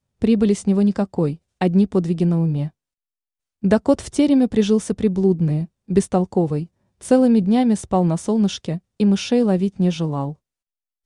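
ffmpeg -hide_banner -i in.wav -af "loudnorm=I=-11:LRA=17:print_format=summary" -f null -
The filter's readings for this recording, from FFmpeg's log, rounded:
Input Integrated:    -19.5 LUFS
Input True Peak:      -3.1 dBTP
Input LRA:             2.7 LU
Input Threshold:     -29.8 LUFS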